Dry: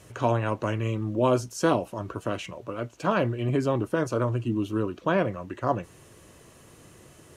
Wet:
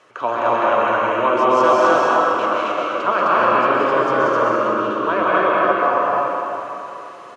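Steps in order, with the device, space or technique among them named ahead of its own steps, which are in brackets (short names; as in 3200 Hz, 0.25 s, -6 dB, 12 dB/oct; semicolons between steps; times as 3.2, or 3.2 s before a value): station announcement (BPF 460–3800 Hz; bell 1200 Hz +8 dB 0.58 oct; loudspeakers at several distances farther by 63 m -3 dB, 89 m 0 dB; reverb RT60 3.1 s, pre-delay 0.115 s, DRR -4 dB); gain +2.5 dB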